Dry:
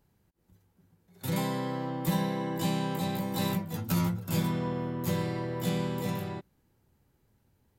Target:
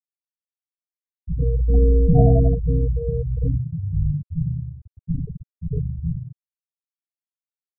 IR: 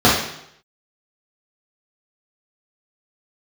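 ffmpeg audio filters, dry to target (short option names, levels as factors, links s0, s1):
-filter_complex "[0:a]asplit=2[s0][s1];[s1]adelay=524.8,volume=0.0708,highshelf=f=4000:g=-11.8[s2];[s0][s2]amix=inputs=2:normalize=0,asplit=3[s3][s4][s5];[s3]afade=t=out:st=1.67:d=0.02[s6];[s4]acontrast=64,afade=t=in:st=1.67:d=0.02,afade=t=out:st=2.49:d=0.02[s7];[s5]afade=t=in:st=2.49:d=0.02[s8];[s6][s7][s8]amix=inputs=3:normalize=0[s9];[1:a]atrim=start_sample=2205[s10];[s9][s10]afir=irnorm=-1:irlink=0,highpass=f=200:t=q:w=0.5412,highpass=f=200:t=q:w=1.307,lowpass=f=3200:t=q:w=0.5176,lowpass=f=3200:t=q:w=0.7071,lowpass=f=3200:t=q:w=1.932,afreqshift=-320,afftfilt=real='re*gte(hypot(re,im),3.16)':imag='im*gte(hypot(re,im),3.16)':win_size=1024:overlap=0.75,volume=0.158"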